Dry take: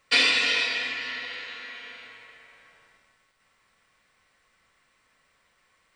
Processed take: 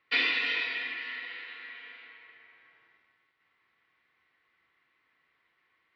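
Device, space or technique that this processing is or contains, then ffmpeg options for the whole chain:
guitar cabinet: -filter_complex "[0:a]asettb=1/sr,asplit=3[s0][s1][s2];[s0]atrim=end=0.974[s3];[s1]atrim=start=0.97:end=2.27,asetpts=PTS-STARTPTS,afade=t=in:d=0.004:c=qsin,afade=t=out:st=1.296:d=0.004:c=qsin,highpass=f=200:p=1[s4];[s2]atrim=start=2.266[s5];[s3][s4]acrossfade=d=0.004:c1=hsin:c2=qsin[s6];[s6][s5]acrossfade=d=0.004:c1=qsin:c2=hsin,highpass=98,equalizer=f=110:t=q:w=4:g=-3,equalizer=f=200:t=q:w=4:g=-7,equalizer=f=340:t=q:w=4:g=6,equalizer=f=570:t=q:w=4:g=-8,equalizer=f=2000:t=q:w=4:g=5,lowpass=f=3800:w=0.5412,lowpass=f=3800:w=1.3066,volume=0.447"

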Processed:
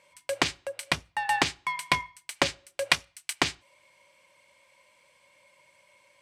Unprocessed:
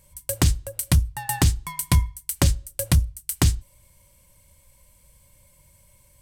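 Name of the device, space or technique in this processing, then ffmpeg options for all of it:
megaphone: -filter_complex "[0:a]highpass=510,lowpass=3700,equalizer=f=2300:t=o:w=0.49:g=5,asoftclip=type=hard:threshold=0.211,asettb=1/sr,asplit=3[s0][s1][s2];[s0]atrim=end=2.904[s3];[s1]atrim=start=2.9:end=3.33,asetpts=PTS-STARTPTS,afade=t=in:d=0.004:c=qsin,afade=t=out:st=0.426:d=0.004:c=qsin,tiltshelf=f=670:g=-6[s4];[s2]atrim=start=3.326[s5];[s3][s4]acrossfade=d=0.004:c1=hsin:c2=qsin[s6];[s6][s5]acrossfade=d=0.004:c1=qsin:c2=hsin,volume=1.68"

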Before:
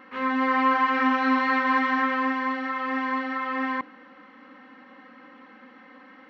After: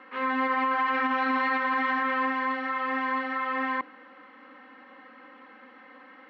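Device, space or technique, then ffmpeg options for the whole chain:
DJ mixer with the lows and highs turned down: -filter_complex "[0:a]acrossover=split=270 5000:gain=0.224 1 0.112[s0][s1][s2];[s0][s1][s2]amix=inputs=3:normalize=0,alimiter=limit=0.119:level=0:latency=1:release=33"

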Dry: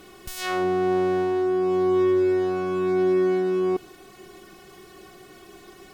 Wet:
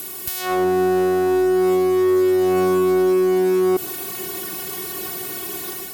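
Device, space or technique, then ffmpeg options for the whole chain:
FM broadcast chain: -filter_complex "[0:a]highpass=68,dynaudnorm=f=440:g=3:m=2.37,acrossover=split=270|1300|4300[s0][s1][s2][s3];[s0]acompressor=threshold=0.0447:ratio=4[s4];[s1]acompressor=threshold=0.158:ratio=4[s5];[s2]acompressor=threshold=0.00631:ratio=4[s6];[s3]acompressor=threshold=0.00112:ratio=4[s7];[s4][s5][s6][s7]amix=inputs=4:normalize=0,aemphasis=mode=production:type=50fm,alimiter=limit=0.15:level=0:latency=1:release=27,asoftclip=type=hard:threshold=0.119,lowpass=f=15000:w=0.5412,lowpass=f=15000:w=1.3066,aemphasis=mode=production:type=50fm,volume=1.88"

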